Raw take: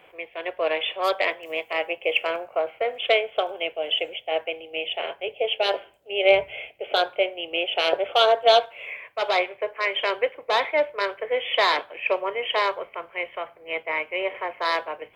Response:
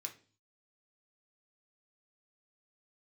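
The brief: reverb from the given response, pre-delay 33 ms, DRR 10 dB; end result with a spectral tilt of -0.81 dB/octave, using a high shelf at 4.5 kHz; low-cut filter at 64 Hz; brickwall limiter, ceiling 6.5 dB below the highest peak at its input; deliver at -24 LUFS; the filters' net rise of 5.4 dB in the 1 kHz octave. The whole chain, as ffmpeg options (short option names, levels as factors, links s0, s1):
-filter_complex "[0:a]highpass=64,equalizer=f=1000:t=o:g=7,highshelf=f=4500:g=5,alimiter=limit=0.376:level=0:latency=1,asplit=2[s0][s1];[1:a]atrim=start_sample=2205,adelay=33[s2];[s1][s2]afir=irnorm=-1:irlink=0,volume=0.447[s3];[s0][s3]amix=inputs=2:normalize=0,volume=0.841"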